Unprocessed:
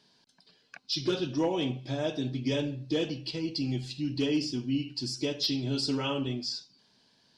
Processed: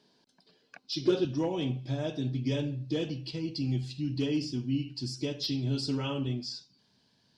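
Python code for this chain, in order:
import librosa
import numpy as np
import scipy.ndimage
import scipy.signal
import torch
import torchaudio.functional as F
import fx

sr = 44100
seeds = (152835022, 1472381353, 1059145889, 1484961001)

y = fx.peak_eq(x, sr, hz=fx.steps((0.0, 380.0), (1.25, 100.0)), db=8.5, octaves=2.3)
y = F.gain(torch.from_numpy(y), -4.5).numpy()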